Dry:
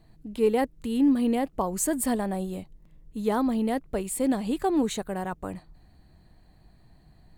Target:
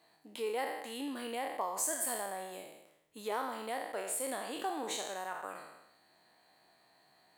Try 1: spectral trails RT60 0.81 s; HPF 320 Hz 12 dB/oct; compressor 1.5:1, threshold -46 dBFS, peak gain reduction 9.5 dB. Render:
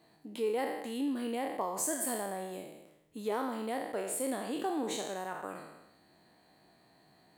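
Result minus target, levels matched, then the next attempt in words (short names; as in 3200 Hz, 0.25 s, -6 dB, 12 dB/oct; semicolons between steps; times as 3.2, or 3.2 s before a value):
250 Hz band +6.5 dB
spectral trails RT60 0.81 s; HPF 640 Hz 12 dB/oct; compressor 1.5:1, threshold -46 dBFS, peak gain reduction 9 dB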